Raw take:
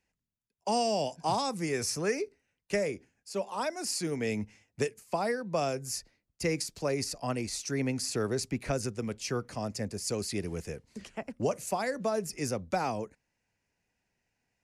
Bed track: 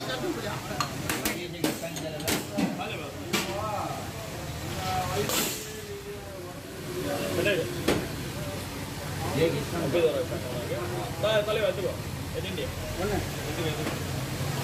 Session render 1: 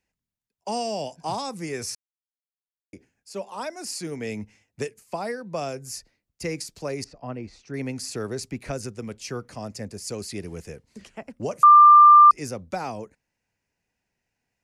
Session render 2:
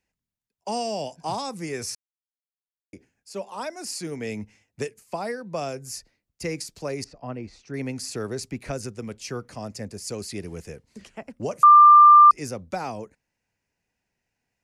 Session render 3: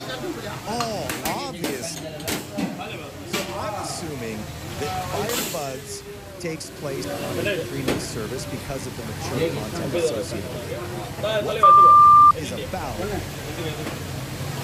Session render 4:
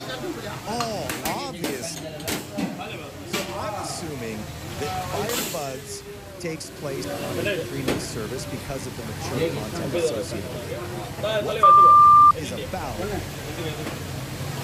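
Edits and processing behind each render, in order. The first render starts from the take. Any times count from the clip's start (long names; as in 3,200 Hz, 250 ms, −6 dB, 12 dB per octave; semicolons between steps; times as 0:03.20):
0:01.95–0:02.93: silence; 0:07.04–0:07.74: head-to-tape spacing loss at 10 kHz 31 dB; 0:11.63–0:12.31: beep over 1,190 Hz −7.5 dBFS
no processing that can be heard
mix in bed track +1 dB
level −1 dB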